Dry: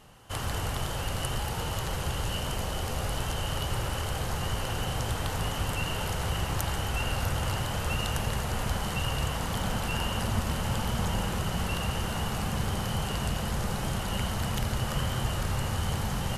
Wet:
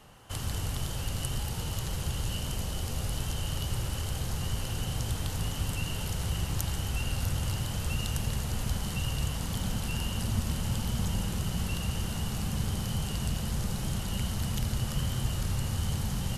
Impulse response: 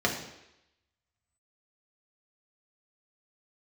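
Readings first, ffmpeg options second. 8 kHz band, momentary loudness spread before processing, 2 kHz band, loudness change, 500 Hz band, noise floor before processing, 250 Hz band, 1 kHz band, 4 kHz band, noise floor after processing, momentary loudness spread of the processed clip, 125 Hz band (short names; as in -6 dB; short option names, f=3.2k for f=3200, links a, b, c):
0.0 dB, 2 LU, -6.5 dB, -1.5 dB, -7.5 dB, -33 dBFS, -1.0 dB, -9.0 dB, -3.0 dB, -35 dBFS, 2 LU, 0.0 dB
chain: -filter_complex "[0:a]acrossover=split=310|3000[a][b][c];[b]acompressor=threshold=-52dB:ratio=2[d];[a][d][c]amix=inputs=3:normalize=0"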